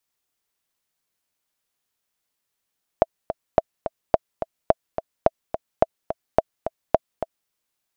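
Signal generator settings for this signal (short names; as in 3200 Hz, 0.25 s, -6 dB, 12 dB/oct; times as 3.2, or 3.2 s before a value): metronome 214 bpm, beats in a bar 2, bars 8, 652 Hz, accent 10.5 dB -1 dBFS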